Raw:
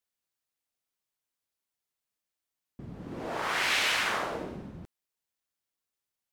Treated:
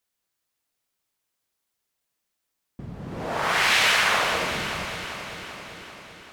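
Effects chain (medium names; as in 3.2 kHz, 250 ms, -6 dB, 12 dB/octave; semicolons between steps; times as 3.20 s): echo whose repeats swap between lows and highs 195 ms, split 2 kHz, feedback 78%, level -5.5 dB; dynamic bell 310 Hz, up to -6 dB, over -52 dBFS, Q 1.5; trim +7 dB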